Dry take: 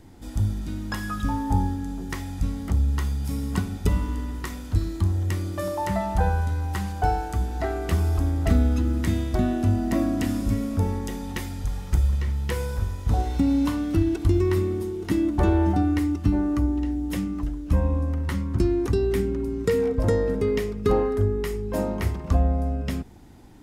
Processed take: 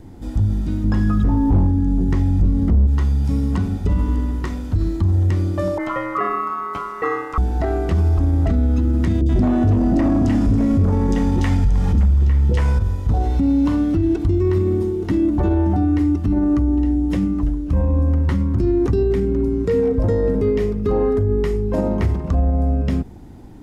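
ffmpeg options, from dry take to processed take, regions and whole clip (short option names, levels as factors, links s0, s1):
-filter_complex "[0:a]asettb=1/sr,asplit=3[s0][s1][s2];[s0]atrim=end=0.844[s3];[s1]atrim=start=0.84:end=2.87,asetpts=PTS-STARTPTS,afade=t=in:d=0.004:c=qsin,afade=t=out:st=2.026:d=0.004:c=qsin,lowshelf=f=430:g=11.5,volume=3.35,asoftclip=hard,volume=0.299[s4];[s2]atrim=start=2.866[s5];[s3][s4]acrossfade=d=0.004:c1=hsin:c2=qsin[s6];[s6][s5]acrossfade=d=0.004:c1=qsin:c2=hsin,asettb=1/sr,asplit=3[s7][s8][s9];[s7]atrim=end=5.784[s10];[s8]atrim=start=5.78:end=7.38,asetpts=PTS-STARTPTS,afade=t=in:d=0.004:c=qsin,afade=t=out:st=1.596:d=0.004:c=qsin,aeval=exprs='val(0)*sin(2*PI*1200*n/s)':c=same,bandreject=f=1600:w=22,adynamicequalizer=threshold=0.0178:dfrequency=1900:dqfactor=0.7:tfrequency=1900:tqfactor=0.7:attack=5:release=100:ratio=0.375:range=3:mode=cutabove:tftype=highshelf[s11];[s9]atrim=start=7.376[s12];[s10][s11]acrossfade=d=0.004:c1=hsin:c2=qsin[s13];[s13][s12]acrossfade=d=0.004:c1=qsin:c2=hsin,asettb=1/sr,asplit=3[s14][s15][s16];[s14]atrim=end=9.214[s17];[s15]atrim=start=9.21:end=12.79,asetpts=PTS-STARTPTS,afade=t=in:d=0.004:c=qsin,afade=t=out:st=3.576:d=0.004:c=qsin,aeval=exprs='0.316*sin(PI/2*2.24*val(0)/0.316)':c=same,acrossover=split=490|3700[s18][s19][s20];[s20]adelay=50[s21];[s19]adelay=80[s22];[s18][s22][s21]amix=inputs=3:normalize=0,atrim=end_sample=157878[s23];[s16]atrim=start=12.786[s24];[s17][s23]acrossfade=d=0.004:c1=hsin:c2=qsin[s25];[s25][s24]acrossfade=d=0.004:c1=qsin:c2=hsin,acrossover=split=7600[s26][s27];[s27]acompressor=threshold=0.00126:ratio=4:attack=1:release=60[s28];[s26][s28]amix=inputs=2:normalize=0,tiltshelf=f=970:g=5,alimiter=limit=0.178:level=0:latency=1:release=38,volume=1.68"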